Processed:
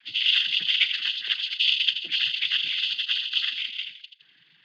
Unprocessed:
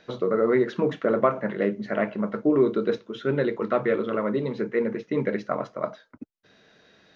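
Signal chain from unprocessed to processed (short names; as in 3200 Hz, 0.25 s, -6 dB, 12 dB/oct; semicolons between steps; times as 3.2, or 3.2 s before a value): granular stretch 0.65×, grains 82 ms; inverted band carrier 3600 Hz; thin delay 82 ms, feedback 44%, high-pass 2800 Hz, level -5.5 dB; noise vocoder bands 16; band shelf 720 Hz -11 dB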